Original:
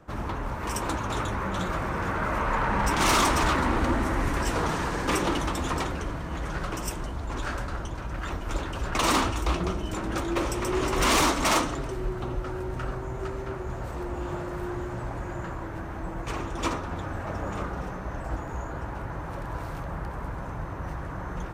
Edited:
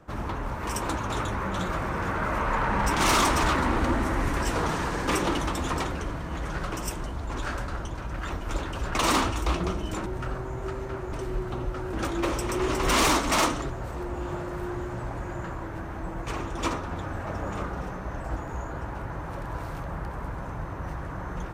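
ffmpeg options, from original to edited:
-filter_complex "[0:a]asplit=5[s0][s1][s2][s3][s4];[s0]atrim=end=10.062[s5];[s1]atrim=start=12.628:end=13.702[s6];[s2]atrim=start=11.828:end=12.632[s7];[s3]atrim=start=10.058:end=11.832[s8];[s4]atrim=start=13.698[s9];[s5][s6]acrossfade=d=0.004:c1=hsin:c2=hsin[s10];[s10][s7]acrossfade=d=0.004:c1=hsin:c2=hsin[s11];[s11][s8]acrossfade=d=0.004:c1=hsin:c2=hsin[s12];[s12][s9]acrossfade=d=0.004:c1=hsin:c2=hsin"

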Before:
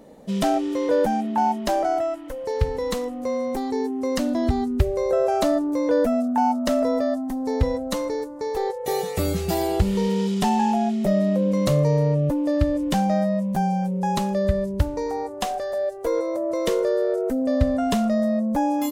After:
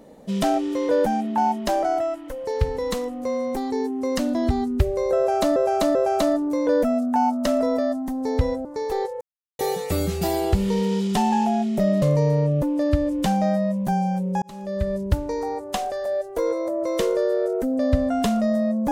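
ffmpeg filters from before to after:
-filter_complex "[0:a]asplit=7[s0][s1][s2][s3][s4][s5][s6];[s0]atrim=end=5.562[s7];[s1]atrim=start=5.168:end=5.562[s8];[s2]atrim=start=5.168:end=7.872[s9];[s3]atrim=start=8.298:end=8.86,asetpts=PTS-STARTPTS,afade=t=out:st=0.558:d=0.004:c=hsin,apad=pad_dur=0.38[s10];[s4]atrim=start=8.86:end=11.292,asetpts=PTS-STARTPTS,afade=t=in:d=0.004:c=hsin[s11];[s5]atrim=start=11.698:end=14.1,asetpts=PTS-STARTPTS,afade=t=out:st=2.398:d=0.004:c=hsin[s12];[s6]atrim=start=14.1,asetpts=PTS-STARTPTS,afade=t=in:d=0.59[s13];[s7][s8]acrossfade=d=0.004:c1=hsin:c2=hsin[s14];[s14][s9]acrossfade=d=0.004:c1=hsin:c2=hsin[s15];[s10][s11]concat=n=2:v=0:a=1[s16];[s15][s16]acrossfade=d=0.004:c1=hsin:c2=hsin[s17];[s12][s13]concat=n=2:v=0:a=1[s18];[s17][s18]acrossfade=d=0.004:c1=hsin:c2=hsin"

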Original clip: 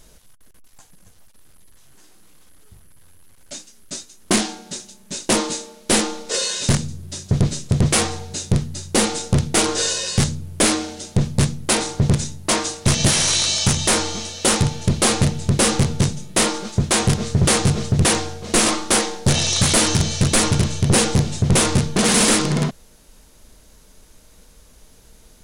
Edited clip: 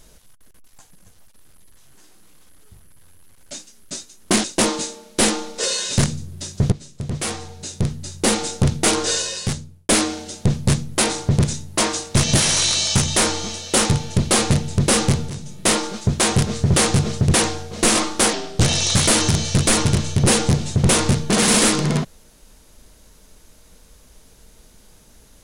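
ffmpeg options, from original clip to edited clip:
-filter_complex "[0:a]asplit=7[s0][s1][s2][s3][s4][s5][s6];[s0]atrim=end=4.442[s7];[s1]atrim=start=5.148:end=7.43,asetpts=PTS-STARTPTS,afade=t=out:st=2.278:d=0.004:c=hsin:silence=0.141254[s8];[s2]atrim=start=7.43:end=10.6,asetpts=PTS-STARTPTS,afade=t=in:d=1.72:silence=0.141254,afade=t=out:st=2.4:d=0.77[s9];[s3]atrim=start=10.6:end=16,asetpts=PTS-STARTPTS,afade=t=in:d=0.004:c=hsin,afade=t=out:st=5.396:d=0.004:c=hsin:silence=0.141254[s10];[s4]atrim=start=16:end=19.044,asetpts=PTS-STARTPTS,afade=t=in:d=0.31:silence=0.141254[s11];[s5]atrim=start=19.04:end=19.31,asetpts=PTS-STARTPTS,asetrate=37485,aresample=44100,atrim=end_sample=14008,asetpts=PTS-STARTPTS[s12];[s6]atrim=start=19.306[s13];[s8][s9][s10][s11]concat=n=4:v=0:a=1[s14];[s7][s14]acrossfade=d=0.004:c1=hsin:c2=hsin[s15];[s15][s12]acrossfade=d=0.004:c1=hsin:c2=hsin[s16];[s16][s13]acrossfade=d=0.004:c1=hsin:c2=hsin"

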